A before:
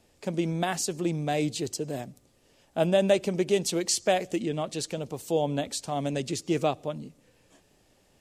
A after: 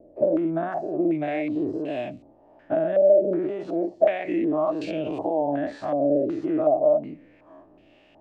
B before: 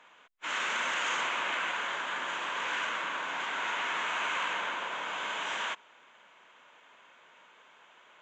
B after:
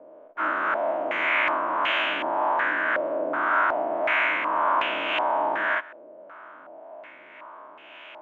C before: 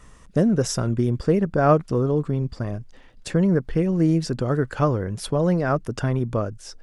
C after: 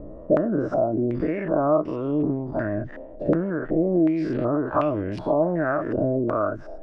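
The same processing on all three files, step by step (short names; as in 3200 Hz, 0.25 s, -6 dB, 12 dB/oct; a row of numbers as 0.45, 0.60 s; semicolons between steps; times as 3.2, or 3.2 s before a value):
spectral dilation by 0.12 s; compressor 12:1, threshold -28 dBFS; small resonant body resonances 310/620 Hz, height 14 dB, ringing for 40 ms; harmonic tremolo 1.8 Hz, depth 50%, crossover 570 Hz; stepped low-pass 2.7 Hz 550–2700 Hz; match loudness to -24 LUFS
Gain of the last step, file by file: -1.5, +3.5, +2.5 dB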